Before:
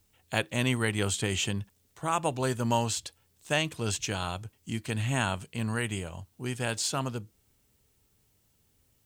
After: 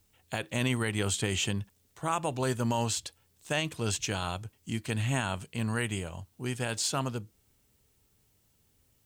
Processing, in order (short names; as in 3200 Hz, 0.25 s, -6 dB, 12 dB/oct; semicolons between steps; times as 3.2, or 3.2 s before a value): limiter -18 dBFS, peak gain reduction 8 dB